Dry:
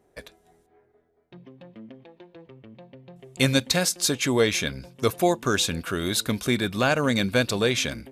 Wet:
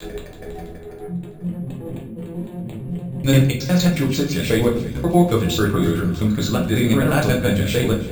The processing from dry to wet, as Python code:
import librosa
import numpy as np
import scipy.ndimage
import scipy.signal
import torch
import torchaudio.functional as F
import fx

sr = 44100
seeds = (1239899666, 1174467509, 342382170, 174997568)

p1 = fx.block_reorder(x, sr, ms=90.0, group=4)
p2 = np.repeat(scipy.signal.resample_poly(p1, 1, 4), 4)[:len(p1)]
p3 = fx.vibrato(p2, sr, rate_hz=0.5, depth_cents=10.0)
p4 = fx.echo_feedback(p3, sr, ms=327, feedback_pct=52, wet_db=-17.5)
p5 = fx.over_compress(p4, sr, threshold_db=-53.0, ratio=-0.5)
p6 = p4 + (p5 * librosa.db_to_amplitude(-1.0))
p7 = fx.low_shelf(p6, sr, hz=290.0, db=10.0)
p8 = fx.room_shoebox(p7, sr, seeds[0], volume_m3=45.0, walls='mixed', distance_m=0.8)
y = p8 * librosa.db_to_amplitude(-3.5)